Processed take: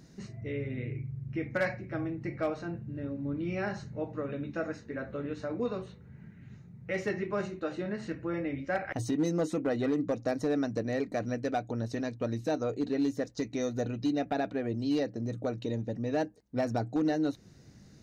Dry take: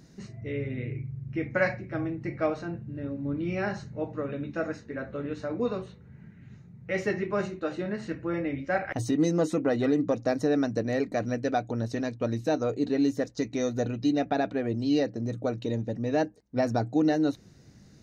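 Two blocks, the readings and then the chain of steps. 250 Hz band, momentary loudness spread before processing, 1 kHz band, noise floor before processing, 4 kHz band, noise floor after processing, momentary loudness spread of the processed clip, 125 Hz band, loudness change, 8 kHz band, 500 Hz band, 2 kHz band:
−4.0 dB, 9 LU, −4.0 dB, −53 dBFS, −4.0 dB, −54 dBFS, 8 LU, −3.0 dB, −4.0 dB, −3.5 dB, −4.0 dB, −4.0 dB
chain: in parallel at −2 dB: downward compressor 5 to 1, threshold −34 dBFS, peak gain reduction 13 dB
on the sum: gain into a clipping stage and back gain 16.5 dB
level −6 dB

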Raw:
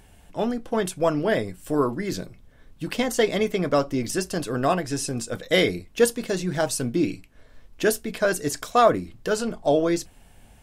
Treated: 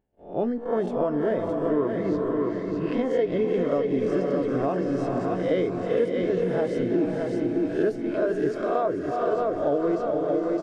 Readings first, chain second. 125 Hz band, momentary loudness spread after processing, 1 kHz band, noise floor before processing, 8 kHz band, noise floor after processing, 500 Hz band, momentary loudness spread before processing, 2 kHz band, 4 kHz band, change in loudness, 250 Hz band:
−2.0 dB, 3 LU, −4.0 dB, −52 dBFS, below −20 dB, −33 dBFS, +0.5 dB, 8 LU, −8.5 dB, −15.5 dB, −1.0 dB, +1.0 dB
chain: peak hold with a rise ahead of every peak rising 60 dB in 0.48 s
head-to-tape spacing loss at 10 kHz 29 dB
noise gate −46 dBFS, range −25 dB
repeating echo 618 ms, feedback 38%, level −6 dB
reversed playback
upward compression, threshold −27 dBFS
reversed playback
noise reduction from a noise print of the clip's start 7 dB
feedback delay with all-pass diffusion 457 ms, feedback 46%, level −6 dB
downward compressor 5 to 1, threshold −23 dBFS, peak gain reduction 10.5 dB
parametric band 380 Hz +10.5 dB 2.6 octaves
level −6.5 dB

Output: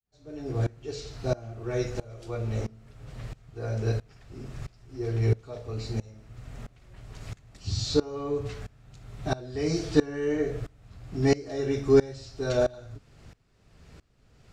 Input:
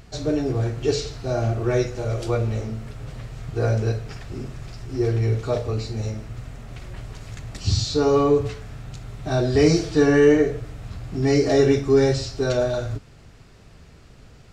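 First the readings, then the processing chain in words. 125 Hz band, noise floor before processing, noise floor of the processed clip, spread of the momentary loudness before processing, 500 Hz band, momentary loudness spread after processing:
−7.0 dB, −48 dBFS, −61 dBFS, 19 LU, −8.0 dB, 20 LU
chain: fade in at the beginning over 0.73 s
tremolo with a ramp in dB swelling 1.5 Hz, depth 23 dB

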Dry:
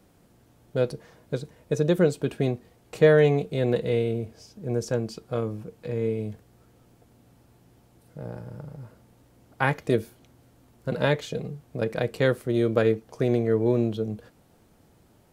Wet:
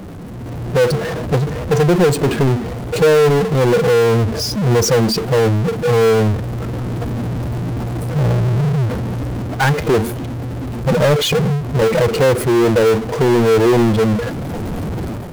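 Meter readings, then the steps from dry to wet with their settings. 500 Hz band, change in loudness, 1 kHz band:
+10.5 dB, +9.5 dB, +14.5 dB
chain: expanding power law on the bin magnitudes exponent 1.7
power curve on the samples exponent 0.35
automatic gain control gain up to 10.5 dB
level −5 dB

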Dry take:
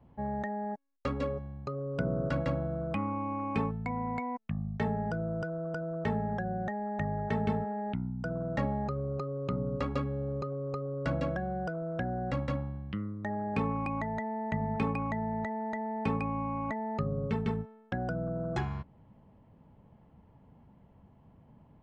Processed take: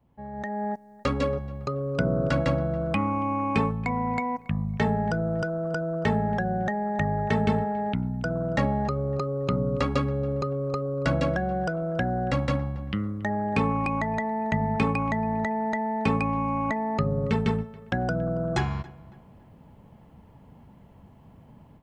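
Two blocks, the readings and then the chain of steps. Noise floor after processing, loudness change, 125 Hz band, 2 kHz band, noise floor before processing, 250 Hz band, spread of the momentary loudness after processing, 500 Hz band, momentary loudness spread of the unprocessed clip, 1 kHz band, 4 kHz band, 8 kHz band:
−53 dBFS, +7.0 dB, +6.5 dB, +9.0 dB, −60 dBFS, +6.5 dB, 5 LU, +7.0 dB, 5 LU, +7.0 dB, +11.5 dB, can't be measured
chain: high-shelf EQ 2,900 Hz +8 dB
automatic gain control gain up to 14 dB
on a send: feedback echo with a low-pass in the loop 278 ms, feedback 41%, low-pass 3,000 Hz, level −21 dB
on the sum: level −7 dB

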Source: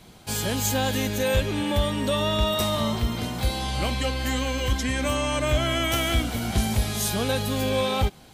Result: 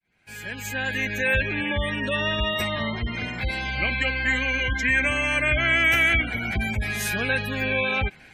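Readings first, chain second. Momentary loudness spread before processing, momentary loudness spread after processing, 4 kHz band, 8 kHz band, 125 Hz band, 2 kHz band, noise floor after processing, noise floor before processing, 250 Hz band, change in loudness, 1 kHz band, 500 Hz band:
4 LU, 10 LU, −2.0 dB, −8.0 dB, −4.0 dB, +10.5 dB, −49 dBFS, −49 dBFS, −4.0 dB, +2.0 dB, −3.0 dB, −4.0 dB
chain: fade in at the beginning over 1.38 s
gate on every frequency bin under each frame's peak −25 dB strong
flat-topped bell 2,000 Hz +16 dB 1 octave
level −3.5 dB

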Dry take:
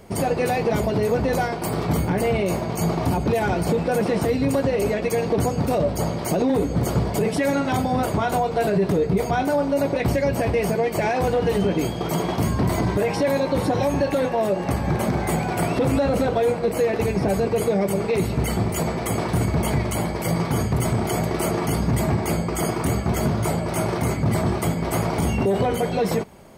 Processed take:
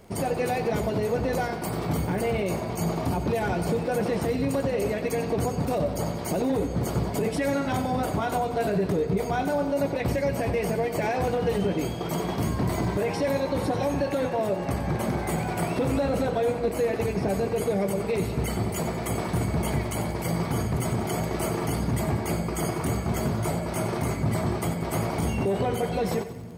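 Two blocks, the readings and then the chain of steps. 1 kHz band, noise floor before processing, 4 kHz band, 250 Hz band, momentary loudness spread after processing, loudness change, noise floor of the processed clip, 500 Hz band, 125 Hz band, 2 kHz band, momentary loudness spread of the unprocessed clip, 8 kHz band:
−4.5 dB, −28 dBFS, −4.5 dB, −4.5 dB, 3 LU, −4.5 dB, −32 dBFS, −4.5 dB, −4.5 dB, −4.5 dB, 3 LU, −4.5 dB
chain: echo with a time of its own for lows and highs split 340 Hz, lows 700 ms, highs 92 ms, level −12 dB
surface crackle 16 per second −35 dBFS
level −5 dB

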